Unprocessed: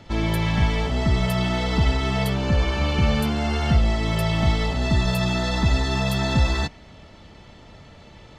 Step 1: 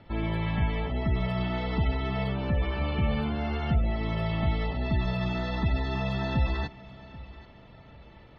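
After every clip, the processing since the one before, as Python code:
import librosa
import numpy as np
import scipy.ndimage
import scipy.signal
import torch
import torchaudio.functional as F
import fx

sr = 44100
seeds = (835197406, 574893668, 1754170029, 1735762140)

y = fx.spec_gate(x, sr, threshold_db=-30, keep='strong')
y = scipy.signal.sosfilt(scipy.signal.butter(2, 3000.0, 'lowpass', fs=sr, output='sos'), y)
y = fx.echo_feedback(y, sr, ms=784, feedback_pct=40, wet_db=-19.5)
y = y * librosa.db_to_amplitude(-6.5)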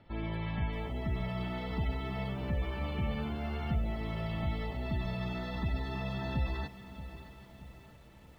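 y = fx.echo_crushed(x, sr, ms=627, feedback_pct=55, bits=8, wet_db=-14.0)
y = y * librosa.db_to_amplitude(-7.0)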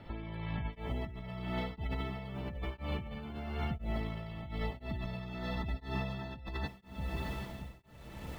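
y = fx.tremolo_shape(x, sr, shape='triangle', hz=0.99, depth_pct=100)
y = fx.over_compress(y, sr, threshold_db=-46.0, ratio=-1.0)
y = y * librosa.db_to_amplitude(7.5)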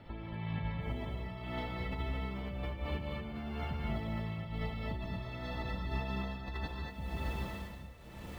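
y = fx.rev_gated(x, sr, seeds[0], gate_ms=260, shape='rising', drr_db=0.5)
y = y * librosa.db_to_amplitude(-2.5)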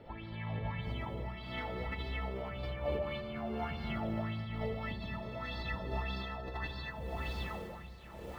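y = fx.echo_wet_lowpass(x, sr, ms=63, feedback_pct=75, hz=1700.0, wet_db=-7.0)
y = fx.bell_lfo(y, sr, hz=1.7, low_hz=440.0, high_hz=4700.0, db=13)
y = y * librosa.db_to_amplitude(-3.5)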